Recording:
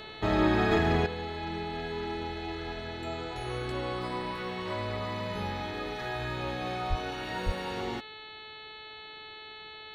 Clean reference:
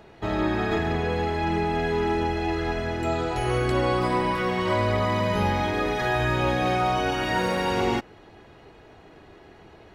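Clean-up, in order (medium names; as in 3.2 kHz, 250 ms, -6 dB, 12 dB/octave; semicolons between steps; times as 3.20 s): de-hum 432.6 Hz, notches 10; 1.06 s: gain correction +11 dB; 6.89–7.01 s: high-pass 140 Hz 24 dB/octave; 7.45–7.57 s: high-pass 140 Hz 24 dB/octave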